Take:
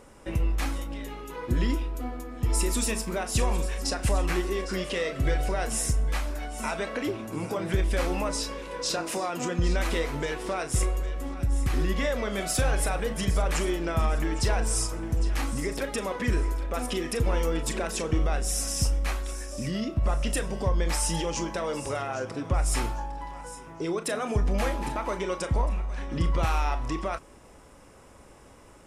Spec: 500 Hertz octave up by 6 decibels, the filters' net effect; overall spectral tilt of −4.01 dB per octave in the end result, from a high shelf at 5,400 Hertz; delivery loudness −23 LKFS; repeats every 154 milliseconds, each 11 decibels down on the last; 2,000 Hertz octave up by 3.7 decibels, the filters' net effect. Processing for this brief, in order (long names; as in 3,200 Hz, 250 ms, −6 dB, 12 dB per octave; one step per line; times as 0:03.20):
parametric band 500 Hz +7 dB
parametric band 2,000 Hz +3.5 dB
high-shelf EQ 5,400 Hz +5.5 dB
repeating echo 154 ms, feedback 28%, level −11 dB
level +3 dB